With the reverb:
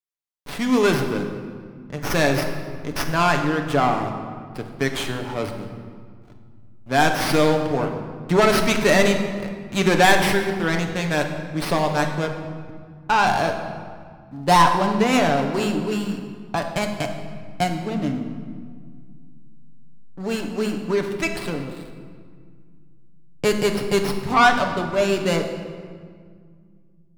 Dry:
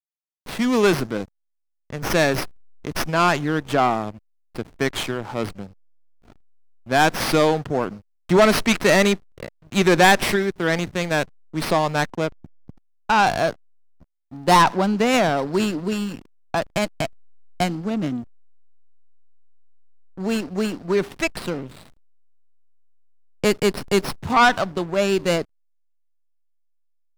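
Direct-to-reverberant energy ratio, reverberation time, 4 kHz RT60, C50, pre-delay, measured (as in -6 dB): 3.0 dB, 1.9 s, 1.3 s, 6.5 dB, 7 ms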